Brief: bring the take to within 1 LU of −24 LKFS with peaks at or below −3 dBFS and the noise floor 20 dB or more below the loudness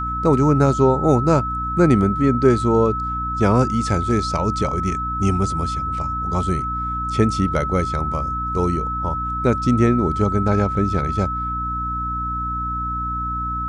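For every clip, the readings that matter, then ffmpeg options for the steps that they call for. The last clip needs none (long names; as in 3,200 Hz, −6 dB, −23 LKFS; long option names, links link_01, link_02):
mains hum 60 Hz; hum harmonics up to 300 Hz; level of the hum −26 dBFS; interfering tone 1,300 Hz; level of the tone −23 dBFS; integrated loudness −20.0 LKFS; sample peak −2.0 dBFS; target loudness −24.0 LKFS
→ -af "bandreject=frequency=60:width_type=h:width=4,bandreject=frequency=120:width_type=h:width=4,bandreject=frequency=180:width_type=h:width=4,bandreject=frequency=240:width_type=h:width=4,bandreject=frequency=300:width_type=h:width=4"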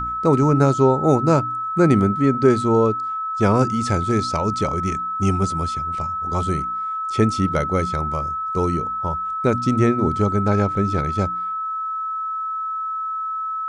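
mains hum none found; interfering tone 1,300 Hz; level of the tone −23 dBFS
→ -af "bandreject=frequency=1300:width=30"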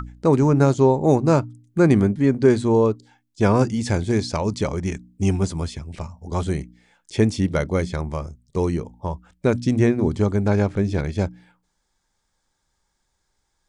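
interfering tone none found; integrated loudness −21.0 LKFS; sample peak −3.0 dBFS; target loudness −24.0 LKFS
→ -af "volume=-3dB"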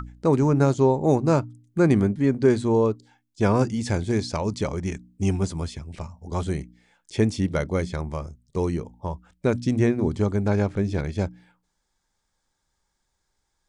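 integrated loudness −24.0 LKFS; sample peak −6.0 dBFS; background noise floor −76 dBFS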